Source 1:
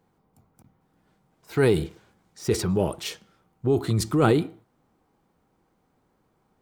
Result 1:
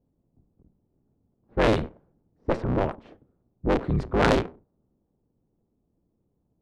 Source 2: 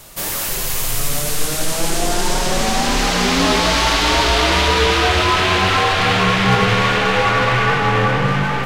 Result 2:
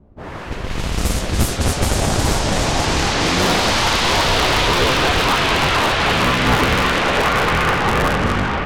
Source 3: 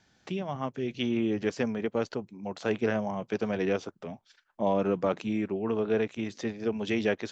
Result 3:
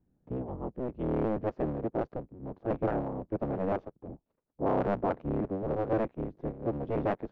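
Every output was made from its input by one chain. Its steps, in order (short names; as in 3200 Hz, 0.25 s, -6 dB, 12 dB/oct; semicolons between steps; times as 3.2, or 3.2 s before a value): cycle switcher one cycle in 3, inverted; low-pass opened by the level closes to 330 Hz, open at -11.5 dBFS; gain -1 dB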